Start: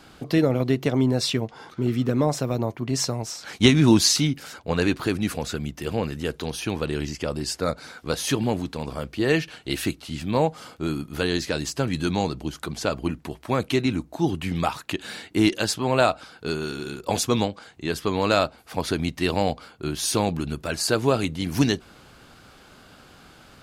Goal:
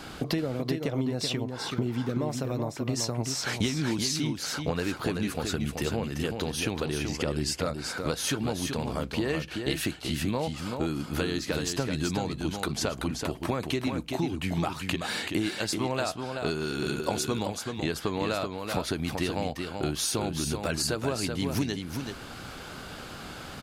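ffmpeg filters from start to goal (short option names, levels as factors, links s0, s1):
-af "acompressor=threshold=0.02:ratio=10,aecho=1:1:381:0.531,volume=2.37"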